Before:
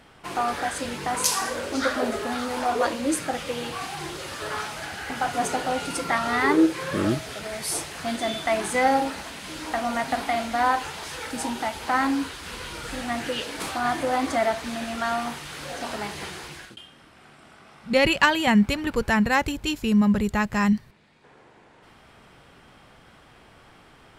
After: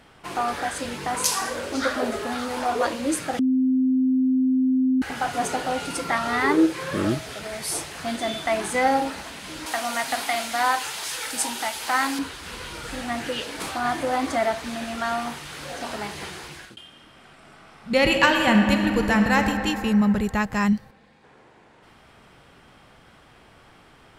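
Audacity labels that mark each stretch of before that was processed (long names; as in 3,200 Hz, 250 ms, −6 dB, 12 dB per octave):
3.390000	5.020000	beep over 259 Hz −17 dBFS
9.660000	12.190000	spectral tilt +3 dB per octave
16.770000	19.380000	thrown reverb, RT60 3 s, DRR 3.5 dB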